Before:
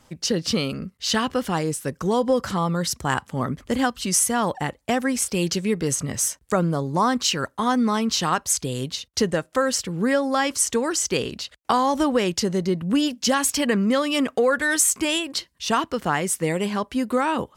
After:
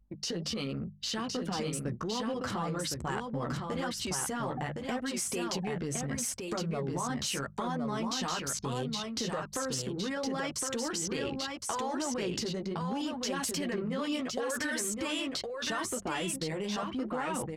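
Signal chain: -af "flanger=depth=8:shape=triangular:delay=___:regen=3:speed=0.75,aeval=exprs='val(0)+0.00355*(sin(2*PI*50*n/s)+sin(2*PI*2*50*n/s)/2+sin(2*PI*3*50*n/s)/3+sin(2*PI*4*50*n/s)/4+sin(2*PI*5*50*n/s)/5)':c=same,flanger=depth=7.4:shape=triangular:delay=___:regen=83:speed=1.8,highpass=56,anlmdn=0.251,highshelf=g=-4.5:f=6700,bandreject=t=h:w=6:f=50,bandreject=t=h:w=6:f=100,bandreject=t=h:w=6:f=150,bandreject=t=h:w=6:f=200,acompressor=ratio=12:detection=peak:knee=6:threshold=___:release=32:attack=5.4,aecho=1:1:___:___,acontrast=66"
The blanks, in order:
7.3, 1.4, -40dB, 1063, 0.631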